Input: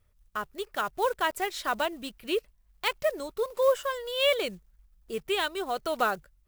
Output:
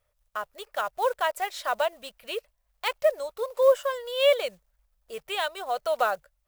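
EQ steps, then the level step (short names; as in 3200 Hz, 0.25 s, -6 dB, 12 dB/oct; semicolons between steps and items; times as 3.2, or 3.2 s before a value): resonant low shelf 430 Hz -9 dB, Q 3; -1.0 dB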